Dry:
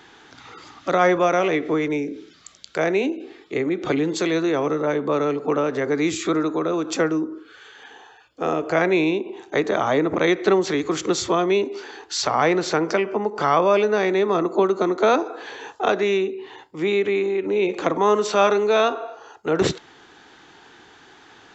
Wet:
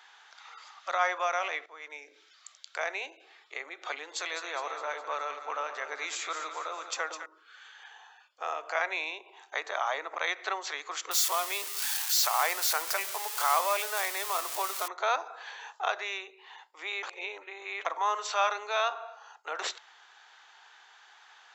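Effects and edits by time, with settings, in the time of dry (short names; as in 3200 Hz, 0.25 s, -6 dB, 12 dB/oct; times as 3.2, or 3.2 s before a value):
1.66–2.16 fade in, from -17 dB
4–7.26 split-band echo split 930 Hz, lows 0.109 s, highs 0.206 s, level -9 dB
11.11–14.88 switching spikes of -14.5 dBFS
17.03–17.85 reverse
whole clip: HPF 740 Hz 24 dB/oct; gain -6 dB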